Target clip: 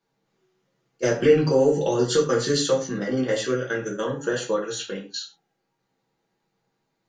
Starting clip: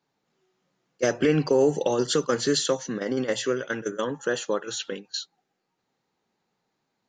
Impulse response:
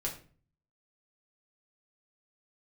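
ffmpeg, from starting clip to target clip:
-filter_complex "[1:a]atrim=start_sample=2205,atrim=end_sample=6174,asetrate=43659,aresample=44100[link_01];[0:a][link_01]afir=irnorm=-1:irlink=0,volume=-1dB"

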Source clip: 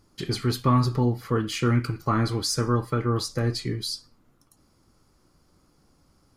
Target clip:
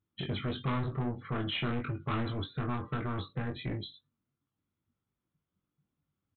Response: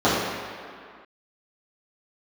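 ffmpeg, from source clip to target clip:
-filter_complex "[0:a]highpass=89,afftdn=noise_reduction=22:noise_floor=-44,equalizer=frequency=640:width_type=o:width=2.9:gain=-10,aresample=8000,asoftclip=type=tanh:threshold=-32.5dB,aresample=44100,asplit=2[link_01][link_02];[link_02]adelay=21,volume=-5dB[link_03];[link_01][link_03]amix=inputs=2:normalize=0,volume=3.5dB"

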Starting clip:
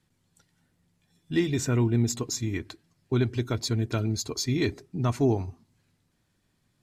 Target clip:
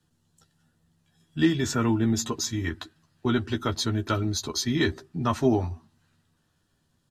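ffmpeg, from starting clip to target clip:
ffmpeg -i in.wav -filter_complex "[0:a]equalizer=frequency=2300:width=6.8:gain=-14.5,acrossover=split=110|1000|3200[link_01][link_02][link_03][link_04];[link_03]dynaudnorm=framelen=260:gausssize=9:maxgain=9dB[link_05];[link_01][link_02][link_05][link_04]amix=inputs=4:normalize=0,asplit=2[link_06][link_07];[link_07]adelay=12,volume=-6dB[link_08];[link_06][link_08]amix=inputs=2:normalize=0,asetrate=42336,aresample=44100" out.wav

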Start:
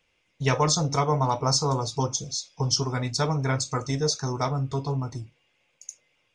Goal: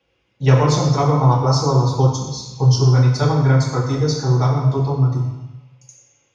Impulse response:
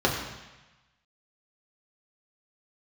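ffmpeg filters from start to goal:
-filter_complex "[1:a]atrim=start_sample=2205[link_01];[0:a][link_01]afir=irnorm=-1:irlink=0,volume=-10dB"

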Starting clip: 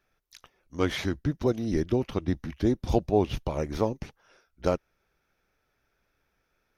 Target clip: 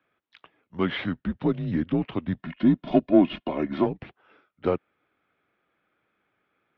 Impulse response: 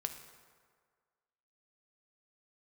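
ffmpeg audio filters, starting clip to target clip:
-filter_complex "[0:a]asplit=2[link_01][link_02];[link_02]volume=21dB,asoftclip=hard,volume=-21dB,volume=-9dB[link_03];[link_01][link_03]amix=inputs=2:normalize=0,asettb=1/sr,asplit=3[link_04][link_05][link_06];[link_04]atrim=end=2.394[link_07];[link_05]atrim=start=2.39:end=3.86,asetpts=PTS-STARTPTS,afade=type=in:duration=0.004:curve=qsin,afade=type=out:start_time=1.466:duration=0.004:curve=qsin,aecho=1:1:2.7:0.93,atrim=end_sample=64827[link_08];[link_06]atrim=start=3.856[link_09];[link_07][link_08]acrossfade=duration=0.004:curve1=hsin:curve2=qsin[link_10];[link_10][link_09]acrossfade=duration=0.004:curve1=qsin:curve2=hsin,highpass=frequency=200:width_type=q:width=0.5412,highpass=frequency=200:width_type=q:width=1.307,lowpass=frequency=3500:width_type=q:width=0.5176,lowpass=frequency=3500:width_type=q:width=0.7071,lowpass=frequency=3500:width_type=q:width=1.932,afreqshift=-85"

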